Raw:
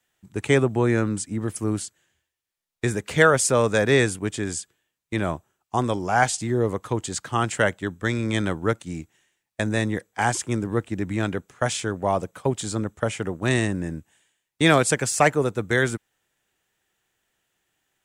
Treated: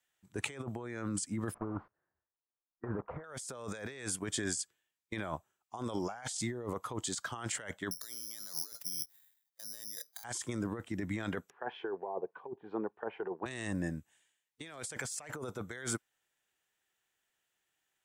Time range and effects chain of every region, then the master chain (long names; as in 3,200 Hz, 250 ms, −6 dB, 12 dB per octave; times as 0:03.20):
0:01.54–0:03.24: one scale factor per block 3 bits + low-pass filter 1,300 Hz 24 dB per octave
0:07.91–0:10.24: moving average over 10 samples + low-shelf EQ 410 Hz −9 dB + bad sample-rate conversion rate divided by 8×, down filtered, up zero stuff
0:11.50–0:13.46: loudspeaker in its box 270–2,300 Hz, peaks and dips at 270 Hz −5 dB, 400 Hz +7 dB, 580 Hz −8 dB, 860 Hz +4 dB, 1,300 Hz −10 dB, 2,100 Hz −9 dB + treble cut that deepens with the level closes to 670 Hz, closed at −20.5 dBFS
whole clip: noise reduction from a noise print of the clip's start 8 dB; low-shelf EQ 460 Hz −8.5 dB; compressor whose output falls as the input rises −34 dBFS, ratio −1; level −6.5 dB